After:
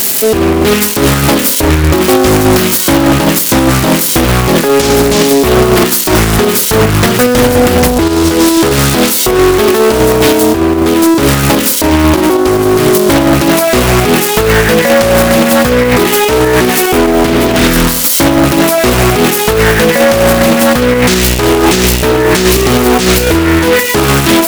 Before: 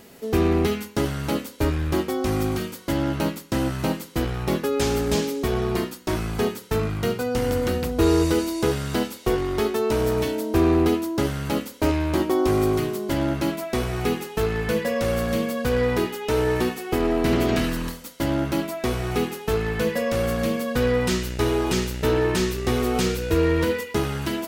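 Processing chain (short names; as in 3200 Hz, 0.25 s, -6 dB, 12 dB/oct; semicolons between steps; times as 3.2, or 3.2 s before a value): switching spikes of -26 dBFS; low shelf 230 Hz -6 dB; notch 470 Hz, Q 12; negative-ratio compressor -26 dBFS, ratio -0.5; chopper 4.9 Hz, depth 60%, duty 60%; soft clip -24.5 dBFS, distortion -14 dB; maximiser +35.5 dB; Doppler distortion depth 0.39 ms; gain -1 dB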